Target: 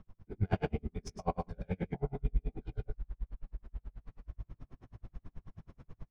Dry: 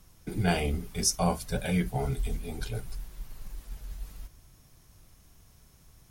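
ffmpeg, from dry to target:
-filter_complex "[0:a]bass=f=250:g=3,treble=f=4k:g=-3,bandreject=f=60:t=h:w=6,bandreject=f=120:t=h:w=6,bandreject=f=180:t=h:w=6,areverse,acompressor=mode=upward:threshold=-30dB:ratio=2.5,areverse,flanger=delay=18.5:depth=2.6:speed=2.7,adynamicsmooth=sensitivity=1:basefreq=1.6k,asplit=2[a][b];[b]aecho=0:1:123:0.596[c];[a][c]amix=inputs=2:normalize=0,aeval=exprs='val(0)*pow(10,-40*(0.5-0.5*cos(2*PI*9.3*n/s))/20)':c=same,volume=2.5dB"

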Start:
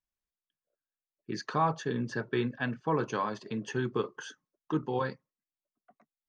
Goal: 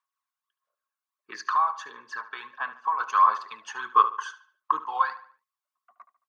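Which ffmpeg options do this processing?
-filter_complex "[0:a]aphaser=in_gain=1:out_gain=1:delay=1.4:decay=0.51:speed=1.5:type=sinusoidal,asettb=1/sr,asplit=3[a][b][c];[a]atrim=end=1.404[d];[b]atrim=start=1.4:end=3,asetpts=PTS-STARTPTS,afade=t=in:d=0.004:c=qsin,afade=t=out:st=1.596:d=0.004:c=qsin,acompressor=threshold=-31dB:ratio=6[e];[c]atrim=start=2.996[f];[d][e]acrossfade=d=0.004:c1=hsin:c2=qsin[g];[g][f]acrossfade=d=0.004:c1=qsin:c2=hsin,highpass=f=1.1k:t=q:w=10,asplit=2[h][i];[i]adelay=73,lowpass=f=4.7k:p=1,volume=-14dB,asplit=2[j][k];[k]adelay=73,lowpass=f=4.7k:p=1,volume=0.41,asplit=2[l][m];[m]adelay=73,lowpass=f=4.7k:p=1,volume=0.41,asplit=2[n][o];[o]adelay=73,lowpass=f=4.7k:p=1,volume=0.41[p];[j][l][n][p]amix=inputs=4:normalize=0[q];[h][q]amix=inputs=2:normalize=0"

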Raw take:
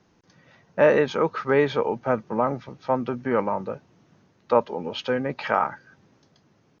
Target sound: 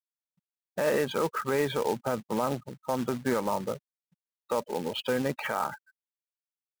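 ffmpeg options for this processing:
-af "afftfilt=real='re*gte(hypot(re,im),0.0224)':imag='im*gte(hypot(re,im),0.0224)':win_size=1024:overlap=0.75,alimiter=limit=-16.5dB:level=0:latency=1:release=71,acrusher=bits=3:mode=log:mix=0:aa=0.000001,volume=-1.5dB"

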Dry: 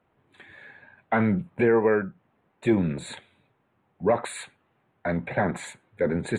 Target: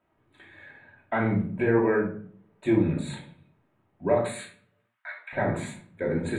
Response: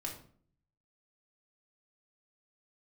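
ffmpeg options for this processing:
-filter_complex "[0:a]asettb=1/sr,asplit=3[a][b][c];[a]atrim=end=4.224[d];[b]atrim=start=4.22:end=5.33,asetpts=PTS-STARTPTS,afade=t=in:d=0.004:c=qsin,afade=t=out:st=1.106:d=0.004:c=qsin,highpass=f=1.2k:w=0.5412,highpass=f=1.2k:w=1.3066[e];[c]atrim=start=5.326[f];[d][e]acrossfade=d=0.004:c1=hsin:c2=qsin[g];[g][f]acrossfade=d=0.004:c1=qsin:c2=hsin[h];[1:a]atrim=start_sample=2205[i];[h][i]afir=irnorm=-1:irlink=0,volume=-1.5dB"

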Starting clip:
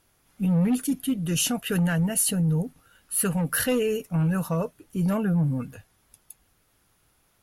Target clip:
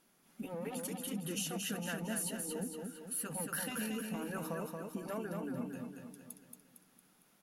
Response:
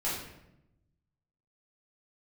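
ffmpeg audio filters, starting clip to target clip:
-filter_complex "[0:a]afftfilt=real='re*lt(hypot(re,im),0.447)':imag='im*lt(hypot(re,im),0.447)':win_size=1024:overlap=0.75,lowshelf=f=130:t=q:w=3:g=-13,acompressor=threshold=-35dB:ratio=3,asplit=2[a][b];[b]aecho=0:1:228|456|684|912|1140|1368:0.631|0.309|0.151|0.0742|0.0364|0.0178[c];[a][c]amix=inputs=2:normalize=0,volume=-4.5dB"

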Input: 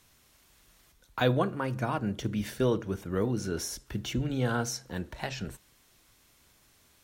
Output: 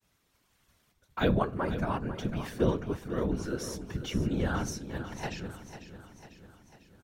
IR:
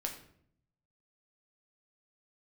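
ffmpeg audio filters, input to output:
-af "agate=range=-33dB:threshold=-57dB:ratio=3:detection=peak,highshelf=f=4k:g=-6,aecho=1:1:7.4:0.48,afftfilt=real='hypot(re,im)*cos(2*PI*random(0))':imag='hypot(re,im)*sin(2*PI*random(1))':win_size=512:overlap=0.75,aecho=1:1:497|994|1491|1988|2485|2982:0.266|0.144|0.0776|0.0419|0.0226|0.0122,volume=4dB"

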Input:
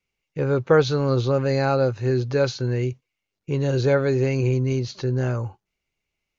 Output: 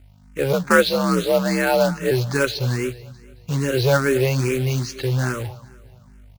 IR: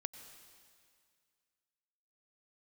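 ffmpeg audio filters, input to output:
-filter_complex "[0:a]acrossover=split=840[a][b];[b]acontrast=55[c];[a][c]amix=inputs=2:normalize=0,asplit=3[d][e][f];[d]afade=t=out:st=0.52:d=0.02[g];[e]afreqshift=54,afade=t=in:st=0.52:d=0.02,afade=t=out:st=2.1:d=0.02[h];[f]afade=t=in:st=2.1:d=0.02[i];[g][h][i]amix=inputs=3:normalize=0,aeval=exprs='val(0)+0.00398*(sin(2*PI*50*n/s)+sin(2*PI*2*50*n/s)/2+sin(2*PI*3*50*n/s)/3+sin(2*PI*4*50*n/s)/4+sin(2*PI*5*50*n/s)/5)':c=same,acrusher=bits=3:mode=log:mix=0:aa=0.000001,asplit=2[j][k];[k]aecho=0:1:220|440|660|880:0.1|0.048|0.023|0.0111[l];[j][l]amix=inputs=2:normalize=0,asplit=2[m][n];[n]afreqshift=2.4[o];[m][o]amix=inputs=2:normalize=1,volume=3.5dB"

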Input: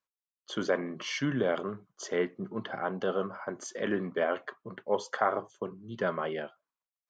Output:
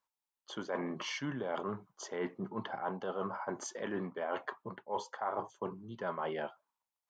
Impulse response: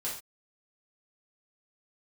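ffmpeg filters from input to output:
-af "equalizer=f=890:w=3:g=12,areverse,acompressor=threshold=-34dB:ratio=6,areverse"

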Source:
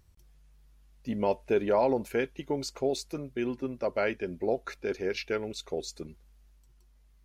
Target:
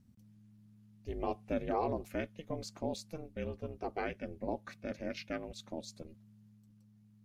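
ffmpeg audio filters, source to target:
-af "lowshelf=f=96:g=9,aeval=exprs='val(0)*sin(2*PI*160*n/s)':c=same,volume=-6dB"

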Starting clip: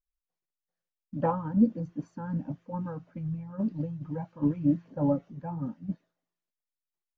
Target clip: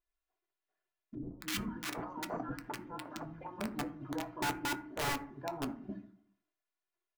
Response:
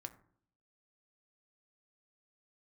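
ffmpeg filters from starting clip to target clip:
-filter_complex "[0:a]bass=f=250:g=-10,treble=f=4k:g=-14,bandreject=f=60:t=h:w=6,bandreject=f=120:t=h:w=6,bandreject=f=180:t=h:w=6,bandreject=f=240:t=h:w=6,bandreject=f=300:t=h:w=6,aecho=1:1:2.9:0.85,acompressor=threshold=-40dB:ratio=2,aeval=exprs='(mod(47.3*val(0)+1,2)-1)/47.3':c=same,asettb=1/sr,asplit=3[a][b][c];[a]atrim=end=1.154[d];[b]atrim=start=1.15:end=3.61,asetpts=PTS-STARTPTS,afade=t=in:d=0.004:c=qsin,afade=t=out:st=2.456:d=0.004:c=qsin,acrossover=split=360|1200[e][f][g];[g]adelay=250[h];[f]adelay=720[i];[e][i][h]amix=inputs=3:normalize=0,atrim=end_sample=108486[j];[c]atrim=start=3.606[k];[d][j]acrossfade=d=0.004:c1=hsin:c2=qsin[l];[l][k]acrossfade=d=0.004:c1=qsin:c2=hsin[m];[1:a]atrim=start_sample=2205,asetrate=48510,aresample=44100[n];[m][n]afir=irnorm=-1:irlink=0,volume=10dB"

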